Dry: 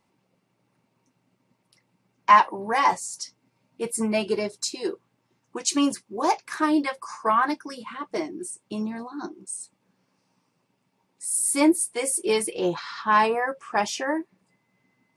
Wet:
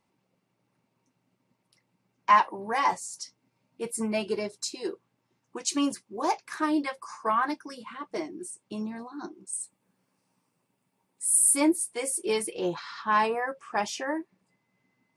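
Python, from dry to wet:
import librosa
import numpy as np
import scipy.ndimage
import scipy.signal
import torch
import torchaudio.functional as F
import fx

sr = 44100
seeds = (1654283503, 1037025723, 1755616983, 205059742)

y = fx.high_shelf_res(x, sr, hz=7200.0, db=6.5, q=1.5, at=(9.53, 11.57))
y = y * librosa.db_to_amplitude(-4.5)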